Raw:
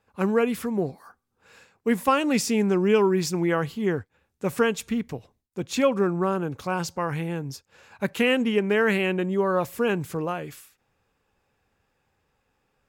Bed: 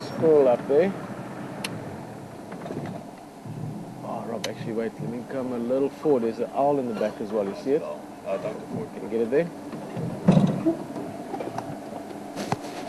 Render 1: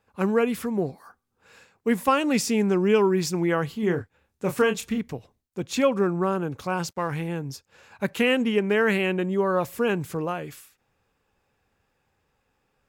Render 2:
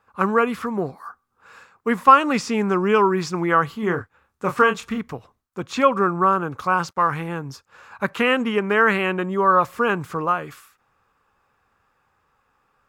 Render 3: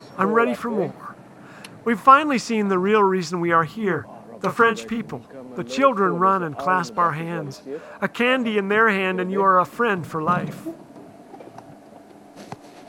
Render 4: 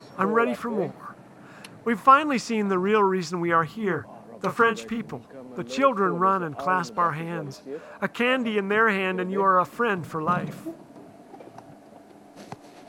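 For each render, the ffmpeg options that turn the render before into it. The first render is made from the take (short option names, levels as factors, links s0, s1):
-filter_complex "[0:a]asettb=1/sr,asplit=3[s0][s1][s2];[s0]atrim=end=3.804[s3];[s1]atrim=start=3.8:end=4.98,asetpts=PTS-STARTPTS,afade=t=in:d=0.004:c=qsin,afade=t=out:st=1.176:d=0.004:c=qsin,asplit=2[s4][s5];[s5]adelay=28,volume=0.422[s6];[s4][s6]amix=inputs=2:normalize=0,atrim=end_sample=52038[s7];[s2]atrim=start=4.976[s8];[s3][s7]acrossfade=d=0.004:c1=hsin:c2=qsin[s9];[s9][s8]acrossfade=d=0.004:c1=qsin:c2=hsin,asettb=1/sr,asplit=3[s10][s11][s12];[s10]atrim=end=6.864[s13];[s11]atrim=start=6.86:end=7.28,asetpts=PTS-STARTPTS,afade=t=in:d=0.004:c=qsin,afade=t=out:st=0.416:d=0.004:c=qsin,aeval=exprs='sgn(val(0))*max(abs(val(0))-0.00266,0)':c=same[s14];[s12]atrim=start=7.276[s15];[s13][s14]acrossfade=d=0.004:c1=hsin:c2=qsin[s16];[s16][s15]acrossfade=d=0.004:c1=qsin:c2=hsin"
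-filter_complex "[0:a]acrossover=split=6700[s0][s1];[s1]acompressor=threshold=0.00355:ratio=4:attack=1:release=60[s2];[s0][s2]amix=inputs=2:normalize=0,equalizer=f=1200:w=1.6:g=14.5"
-filter_complex "[1:a]volume=0.355[s0];[0:a][s0]amix=inputs=2:normalize=0"
-af "volume=0.668"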